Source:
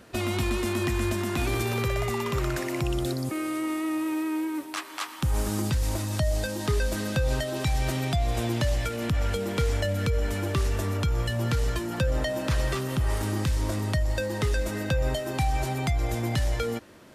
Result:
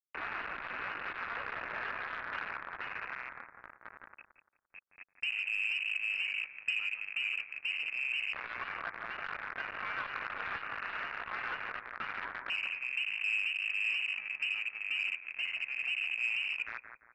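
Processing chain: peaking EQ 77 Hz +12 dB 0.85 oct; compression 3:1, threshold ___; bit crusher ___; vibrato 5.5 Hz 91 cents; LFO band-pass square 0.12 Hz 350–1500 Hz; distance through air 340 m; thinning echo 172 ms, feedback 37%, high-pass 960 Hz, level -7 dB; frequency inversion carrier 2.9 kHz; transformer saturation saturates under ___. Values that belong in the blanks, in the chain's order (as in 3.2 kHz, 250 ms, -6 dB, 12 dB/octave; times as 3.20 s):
-22 dBFS, 4-bit, 1.5 kHz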